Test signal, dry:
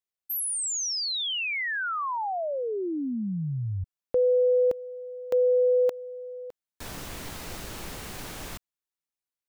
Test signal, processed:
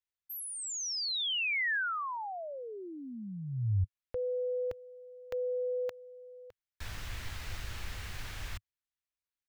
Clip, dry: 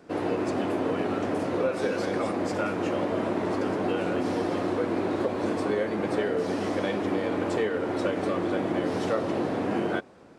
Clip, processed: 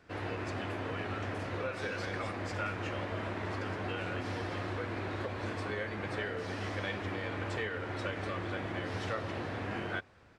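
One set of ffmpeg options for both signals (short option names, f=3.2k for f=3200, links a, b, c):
-af "firequalizer=gain_entry='entry(100,0);entry(150,-13);entry(290,-17);entry(1700,-4);entry(9200,-14)':delay=0.05:min_phase=1,volume=3dB"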